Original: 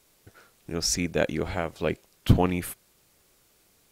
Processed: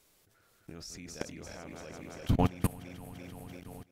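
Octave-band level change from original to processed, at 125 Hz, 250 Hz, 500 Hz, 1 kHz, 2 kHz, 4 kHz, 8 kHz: -7.0 dB, -7.0 dB, -12.0 dB, -6.5 dB, -13.0 dB, -14.0 dB, -14.5 dB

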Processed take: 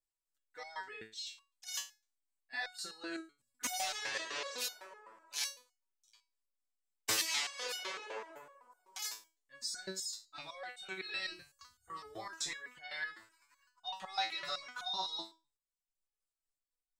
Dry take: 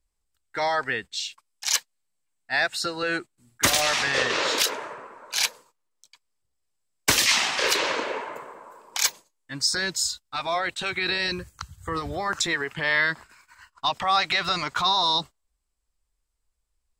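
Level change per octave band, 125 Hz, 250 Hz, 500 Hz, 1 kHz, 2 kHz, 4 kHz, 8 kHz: -24.5 dB, -17.0 dB, -18.5 dB, -17.0 dB, -17.0 dB, -14.5 dB, -13.5 dB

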